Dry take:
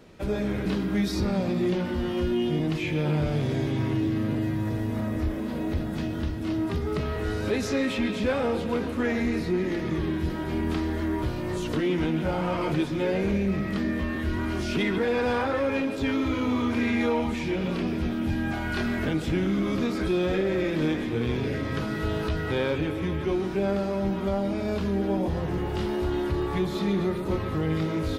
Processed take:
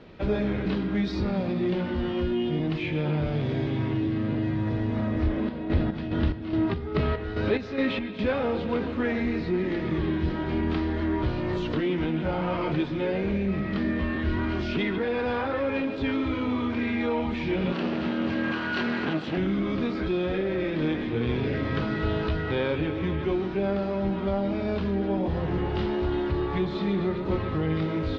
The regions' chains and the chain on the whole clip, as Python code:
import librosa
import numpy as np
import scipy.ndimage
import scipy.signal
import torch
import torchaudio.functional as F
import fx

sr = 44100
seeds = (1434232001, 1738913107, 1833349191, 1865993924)

y = fx.chain(x, sr, fx.lowpass(hz=5700.0, slope=12),
    fx.chopper(hz=2.4, depth_pct=60, duty_pct=50), at=(5.28, 8.19))
y = fx.chain(y, sr, fx.lower_of_two(delay_ms=0.68),
    fx.highpass(hz=210.0, slope=12), at=(17.72, 19.38))
y = scipy.signal.sosfilt(scipy.signal.butter(4, 4300.0, 'lowpass', fs=sr, output='sos'), y)
y = fx.rider(y, sr, range_db=10, speed_s=0.5)